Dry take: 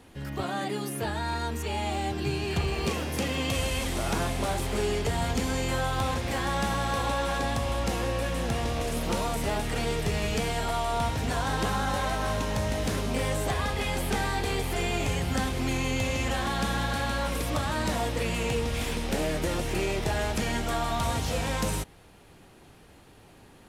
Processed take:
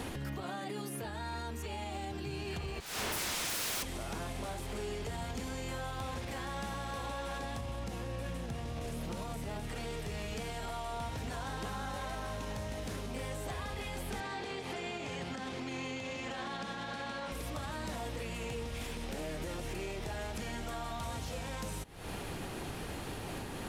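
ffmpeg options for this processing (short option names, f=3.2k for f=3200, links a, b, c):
-filter_complex "[0:a]asettb=1/sr,asplit=3[a][b][c];[a]atrim=end=2.804[d];[b]atrim=start=2.8:end=3.83,asetpts=PTS-STARTPTS,afade=t=in:d=0.004:c=qsin,afade=t=out:st=1.026:d=0.004:c=qsin,aeval=exprs='0.0158*(abs(mod(val(0)/0.0158+3,4)-2)-1)':c=same[e];[c]atrim=start=3.826[f];[d][e]acrossfade=d=0.004:c1=hsin:c2=qsin[g];[g][f]acrossfade=d=0.004:c1=qsin:c2=hsin,asettb=1/sr,asplit=3[h][i][j];[h]atrim=end=7.594[k];[i]atrim=start=7.59:end=9.68,asetpts=PTS-STARTPTS,afade=t=in:d=0.004:c=qsin,afade=t=out:st=2.086:d=0.004:c=qsin,equalizer=f=130:w=0.69:g=7[l];[j]atrim=start=9.676[m];[k][l]acrossfade=d=0.004:c1=hsin:c2=qsin[n];[n][m]acrossfade=d=0.004:c1=qsin:c2=hsin,asettb=1/sr,asplit=3[o][p][q];[o]atrim=end=14.204[r];[p]atrim=start=14.2:end=17.32,asetpts=PTS-STARTPTS,afade=t=in:d=0.004:c=qsin,afade=t=out:st=3.116:d=0.004:c=qsin,highpass=170,lowpass=6k[s];[q]atrim=start=17.316[t];[r][s]acrossfade=d=0.004:c1=hsin:c2=qsin[u];[u][t]acrossfade=d=0.004:c1=qsin:c2=hsin,acompressor=threshold=-45dB:ratio=5,alimiter=level_in=21.5dB:limit=-24dB:level=0:latency=1:release=298,volume=-21.5dB,volume=14.5dB"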